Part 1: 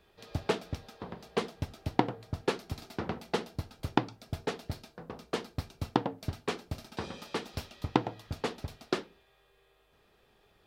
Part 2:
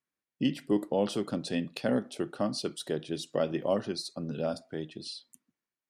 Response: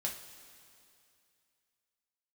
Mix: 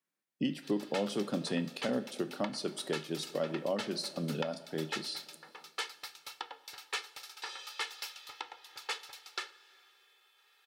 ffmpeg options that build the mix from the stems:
-filter_complex "[0:a]highpass=1.5k,aecho=1:1:2.3:0.72,adelay=450,volume=0.5dB,asplit=2[a][b];[b]volume=-10dB[c];[1:a]highpass=f=150:w=0.5412,highpass=f=150:w=1.3066,volume=-1.5dB,asplit=2[d][e];[e]volume=-8.5dB[f];[2:a]atrim=start_sample=2205[g];[c][f]amix=inputs=2:normalize=0[h];[h][g]afir=irnorm=-1:irlink=0[i];[a][d][i]amix=inputs=3:normalize=0,alimiter=limit=-22dB:level=0:latency=1:release=380"

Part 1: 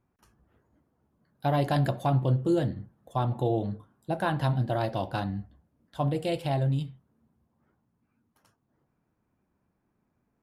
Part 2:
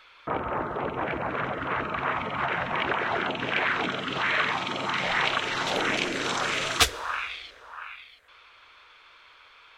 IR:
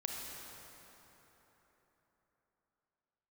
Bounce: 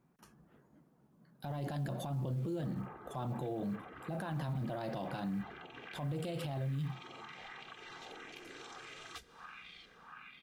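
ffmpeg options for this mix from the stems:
-filter_complex "[0:a]lowshelf=f=120:t=q:w=3:g=-7.5,alimiter=limit=-23dB:level=0:latency=1:release=35,acrusher=bits=9:mode=log:mix=0:aa=0.000001,volume=2.5dB[a];[1:a]aecho=1:1:2.5:0.55,acompressor=threshold=-35dB:ratio=8,adelay=2350,volume=-12.5dB[b];[a][b]amix=inputs=2:normalize=0,alimiter=level_in=7dB:limit=-24dB:level=0:latency=1:release=53,volume=-7dB"

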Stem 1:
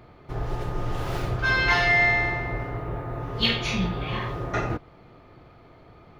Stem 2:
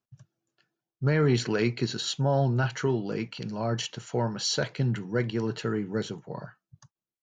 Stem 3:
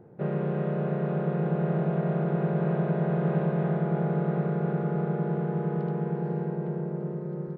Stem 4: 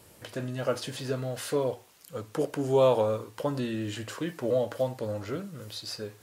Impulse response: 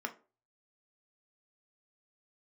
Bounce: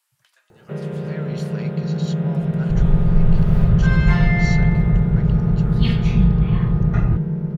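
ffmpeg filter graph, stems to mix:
-filter_complex "[0:a]equalizer=f=6.3k:w=0.44:g=-9,adelay=2400,volume=-2.5dB[a];[1:a]equalizer=f=95:w=0.53:g=-13,volume=-9dB[b];[2:a]highshelf=f=2k:g=11.5,acrossover=split=470|3000[c][d][e];[d]acompressor=threshold=-50dB:ratio=2[f];[c][f][e]amix=inputs=3:normalize=0,adelay=500,volume=0dB,asplit=2[g][h];[h]volume=-5.5dB[i];[3:a]highpass=f=990:w=0.5412,highpass=f=990:w=1.3066,volume=-14.5dB[j];[4:a]atrim=start_sample=2205[k];[i][k]afir=irnorm=-1:irlink=0[l];[a][b][g][j][l]amix=inputs=5:normalize=0,asubboost=boost=11:cutoff=130"

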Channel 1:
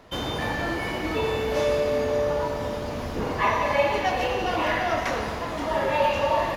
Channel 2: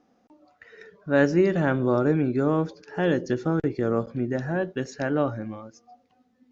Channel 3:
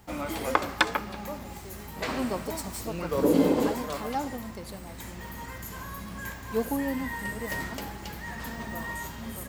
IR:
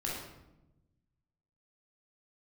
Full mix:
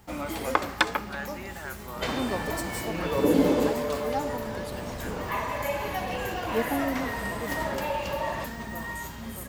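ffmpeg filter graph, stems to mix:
-filter_complex "[0:a]adelay=1900,volume=1dB[a];[1:a]highpass=1.2k,volume=-2dB[b];[2:a]volume=0dB[c];[a][b]amix=inputs=2:normalize=0,acompressor=threshold=-44dB:ratio=1.5,volume=0dB[d];[c][d]amix=inputs=2:normalize=0"

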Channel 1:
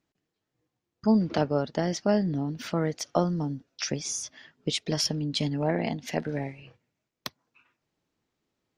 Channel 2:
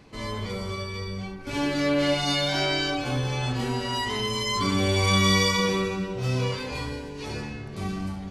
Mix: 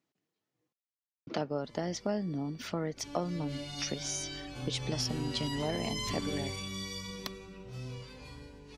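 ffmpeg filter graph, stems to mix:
-filter_complex "[0:a]highpass=130,bandreject=f=1.6k:w=20,volume=-3.5dB,asplit=3[a][b][c];[a]atrim=end=0.73,asetpts=PTS-STARTPTS,afade=t=out:st=0.726:d=0.004:c=hsin[d];[b]atrim=start=0.73:end=1.27,asetpts=PTS-STARTPTS,volume=0[e];[c]atrim=start=1.27,asetpts=PTS-STARTPTS,afade=t=in:d=0.004:c=hsin[f];[d][e][f]concat=n=3:v=0:a=1[g];[1:a]bandreject=f=95.14:t=h:w=4,bandreject=f=190.28:t=h:w=4,acrossover=split=340|3000[h][i][j];[i]acompressor=threshold=-38dB:ratio=2.5[k];[h][k][j]amix=inputs=3:normalize=0,aeval=exprs='val(0)+0.01*(sin(2*PI*50*n/s)+sin(2*PI*2*50*n/s)/2+sin(2*PI*3*50*n/s)/3+sin(2*PI*4*50*n/s)/4+sin(2*PI*5*50*n/s)/5)':c=same,adelay=1500,volume=-5.5dB,afade=t=in:st=2.89:d=0.57:silence=0.316228,afade=t=in:st=4.49:d=0.67:silence=0.421697,afade=t=out:st=6.33:d=0.3:silence=0.316228[l];[g][l]amix=inputs=2:normalize=0,acompressor=threshold=-32dB:ratio=2"

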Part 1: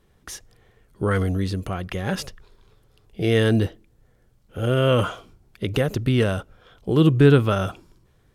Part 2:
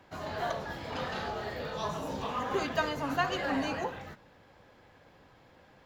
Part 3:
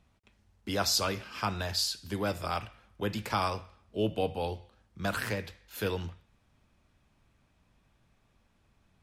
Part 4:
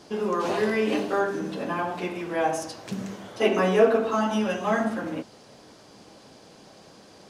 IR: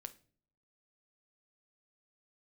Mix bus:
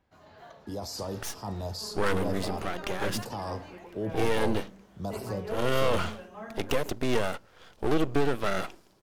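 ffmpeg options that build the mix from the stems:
-filter_complex "[0:a]highpass=300,alimiter=limit=-12.5dB:level=0:latency=1:release=339,aeval=exprs='max(val(0),0)':c=same,adelay=950,volume=2.5dB,asplit=2[a][b];[b]volume=-11dB[c];[1:a]volume=-16.5dB[d];[2:a]alimiter=level_in=1dB:limit=-24dB:level=0:latency=1:release=15,volume=-1dB,firequalizer=gain_entry='entry(930,0);entry(1700,-30);entry(4500,-5)':delay=0.05:min_phase=1,dynaudnorm=f=150:g=9:m=11dB,volume=-13dB,asplit=2[e][f];[f]volume=-1dB[g];[3:a]acrossover=split=2600[h][i];[i]acompressor=threshold=-51dB:ratio=4:attack=1:release=60[j];[h][j]amix=inputs=2:normalize=0,adelay=1700,volume=-18dB[k];[4:a]atrim=start_sample=2205[l];[c][g]amix=inputs=2:normalize=0[m];[m][l]afir=irnorm=-1:irlink=0[n];[a][d][e][k][n]amix=inputs=5:normalize=0,asoftclip=type=tanh:threshold=-14dB"

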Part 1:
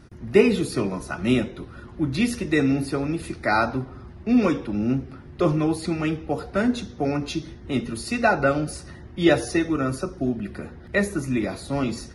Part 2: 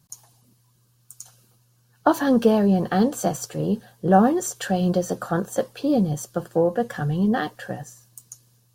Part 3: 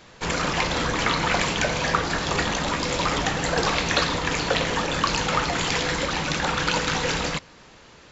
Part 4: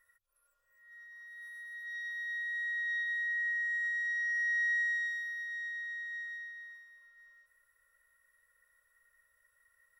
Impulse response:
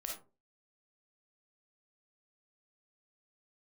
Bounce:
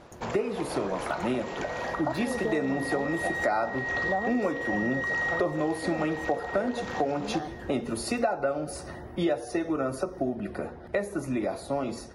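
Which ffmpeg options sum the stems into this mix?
-filter_complex "[0:a]dynaudnorm=f=450:g=9:m=11.5dB,highshelf=f=8.1k:g=7,volume=-9dB[a];[1:a]volume=-17.5dB[b];[2:a]acompressor=threshold=-27dB:ratio=4,volume=-13dB[c];[3:a]adelay=350,volume=2dB[d];[a][b][c][d]amix=inputs=4:normalize=0,equalizer=f=670:w=0.69:g=15,acompressor=threshold=-25dB:ratio=6"

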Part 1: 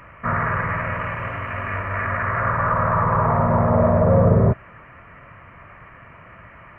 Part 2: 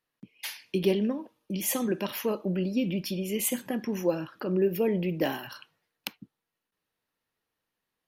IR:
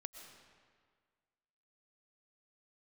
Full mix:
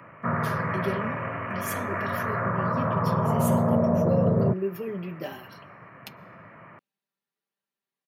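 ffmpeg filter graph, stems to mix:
-filter_complex "[0:a]tiltshelf=f=1.3k:g=5,alimiter=limit=-6dB:level=0:latency=1:release=280,volume=-4dB[a];[1:a]aecho=1:1:5.1:0.67,flanger=delay=6.5:depth=5.7:regen=-49:speed=0.49:shape=sinusoidal,volume=-6dB,asplit=2[b][c];[c]volume=-12.5dB[d];[2:a]atrim=start_sample=2205[e];[d][e]afir=irnorm=-1:irlink=0[f];[a][b][f]amix=inputs=3:normalize=0,highpass=f=130:w=0.5412,highpass=f=130:w=1.3066,acrossover=split=480|3000[g][h][i];[h]acompressor=threshold=-27dB:ratio=6[j];[g][j][i]amix=inputs=3:normalize=0"

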